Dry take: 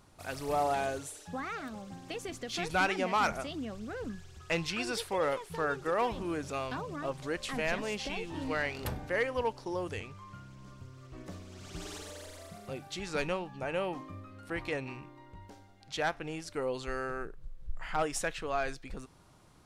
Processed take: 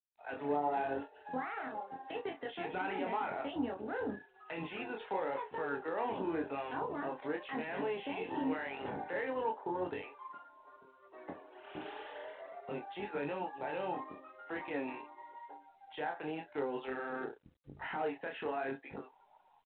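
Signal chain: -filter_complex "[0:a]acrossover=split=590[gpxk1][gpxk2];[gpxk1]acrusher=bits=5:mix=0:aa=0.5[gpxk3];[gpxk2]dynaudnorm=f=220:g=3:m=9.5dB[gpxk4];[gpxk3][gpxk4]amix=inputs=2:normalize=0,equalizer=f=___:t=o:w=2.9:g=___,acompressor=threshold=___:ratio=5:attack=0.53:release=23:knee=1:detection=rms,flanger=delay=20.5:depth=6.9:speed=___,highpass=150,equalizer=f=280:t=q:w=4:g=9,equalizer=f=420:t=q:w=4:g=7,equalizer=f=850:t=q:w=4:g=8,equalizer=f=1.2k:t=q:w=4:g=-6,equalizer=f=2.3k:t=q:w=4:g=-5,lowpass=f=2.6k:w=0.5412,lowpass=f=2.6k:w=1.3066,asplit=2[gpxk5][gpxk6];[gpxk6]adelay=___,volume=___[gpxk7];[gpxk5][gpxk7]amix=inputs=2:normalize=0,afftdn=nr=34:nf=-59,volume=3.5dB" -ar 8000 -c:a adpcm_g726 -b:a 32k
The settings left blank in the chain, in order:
1k, -6, -35dB, 0.9, 35, -12dB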